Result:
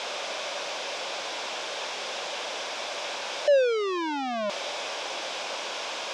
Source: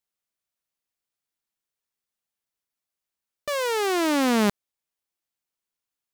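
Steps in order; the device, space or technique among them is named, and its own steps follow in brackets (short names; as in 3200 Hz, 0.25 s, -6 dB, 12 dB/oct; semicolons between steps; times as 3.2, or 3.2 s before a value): home computer beeper (infinite clipping; speaker cabinet 550–4600 Hz, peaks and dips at 570 Hz +8 dB, 1300 Hz -6 dB, 1900 Hz -9 dB, 2900 Hz -4 dB, 4300 Hz -8 dB); gain +8.5 dB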